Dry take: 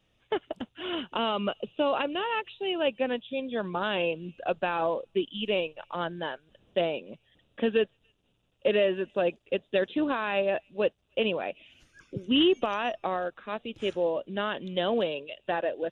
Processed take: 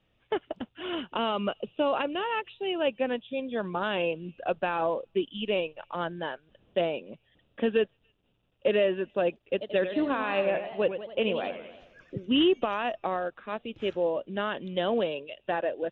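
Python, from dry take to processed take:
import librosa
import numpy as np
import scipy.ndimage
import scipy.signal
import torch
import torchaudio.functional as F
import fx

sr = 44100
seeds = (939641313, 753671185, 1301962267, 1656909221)

y = scipy.signal.sosfilt(scipy.signal.butter(2, 3300.0, 'lowpass', fs=sr, output='sos'), x)
y = fx.echo_warbled(y, sr, ms=91, feedback_pct=56, rate_hz=2.8, cents=196, wet_db=-9.5, at=(9.44, 12.2))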